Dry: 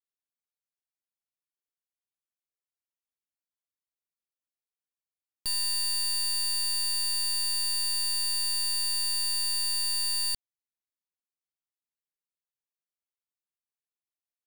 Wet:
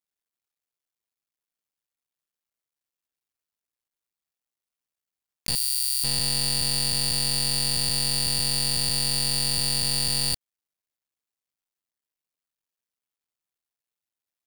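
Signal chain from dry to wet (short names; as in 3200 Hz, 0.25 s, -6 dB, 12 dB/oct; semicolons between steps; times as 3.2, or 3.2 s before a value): cycle switcher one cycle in 2, muted; 5.55–6.04 differentiator; gain +6.5 dB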